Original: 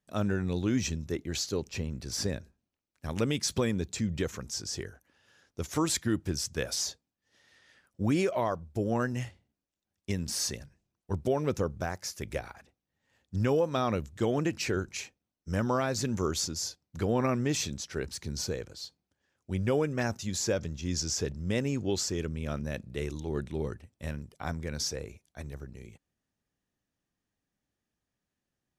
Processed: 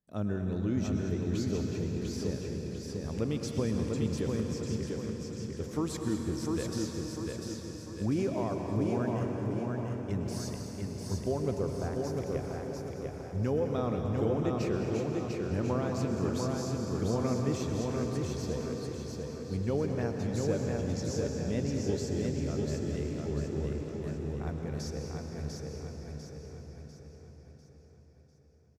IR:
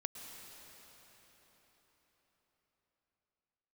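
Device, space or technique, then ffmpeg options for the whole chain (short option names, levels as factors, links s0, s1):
cave: -filter_complex "[0:a]tiltshelf=f=970:g=5.5,aecho=1:1:212:0.251,aecho=1:1:697|1394|2091|2788|3485|4182:0.668|0.294|0.129|0.0569|0.0251|0.011[s0];[1:a]atrim=start_sample=2205[s1];[s0][s1]afir=irnorm=-1:irlink=0,volume=0.562"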